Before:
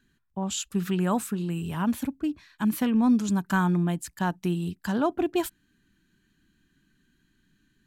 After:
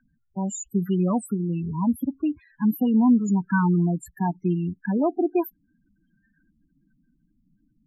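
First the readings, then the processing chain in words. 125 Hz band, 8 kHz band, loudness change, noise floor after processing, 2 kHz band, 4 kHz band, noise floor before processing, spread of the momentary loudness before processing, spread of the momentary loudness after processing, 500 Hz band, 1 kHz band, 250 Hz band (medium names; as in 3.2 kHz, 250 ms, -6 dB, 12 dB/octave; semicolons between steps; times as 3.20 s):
+3.5 dB, no reading, +3.0 dB, -70 dBFS, -1.0 dB, under -10 dB, -71 dBFS, 8 LU, 9 LU, +2.5 dB, +0.5 dB, +3.5 dB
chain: low-pass sweep 14 kHz -> 1.1 kHz, 5.48–6.56 s; loudest bins only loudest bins 8; trim +3.5 dB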